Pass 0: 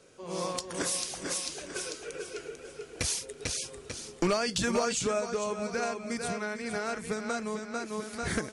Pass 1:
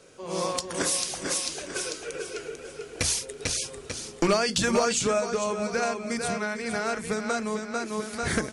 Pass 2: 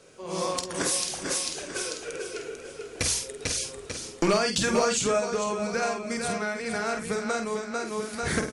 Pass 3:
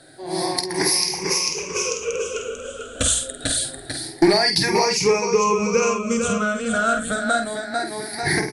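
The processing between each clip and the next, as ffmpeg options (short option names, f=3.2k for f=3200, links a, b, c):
-af "bandreject=f=60:t=h:w=6,bandreject=f=120:t=h:w=6,bandreject=f=180:t=h:w=6,bandreject=f=240:t=h:w=6,bandreject=f=300:t=h:w=6,bandreject=f=360:t=h:w=6,bandreject=f=420:t=h:w=6,volume=5dB"
-filter_complex "[0:a]asplit=2[a][b];[b]adelay=49,volume=-7dB[c];[a][c]amix=inputs=2:normalize=0,volume=-1dB"
-af "afftfilt=real='re*pow(10,19/40*sin(2*PI*(0.8*log(max(b,1)*sr/1024/100)/log(2)-(0.26)*(pts-256)/sr)))':imag='im*pow(10,19/40*sin(2*PI*(0.8*log(max(b,1)*sr/1024/100)/log(2)-(0.26)*(pts-256)/sr)))':win_size=1024:overlap=0.75,volume=3.5dB"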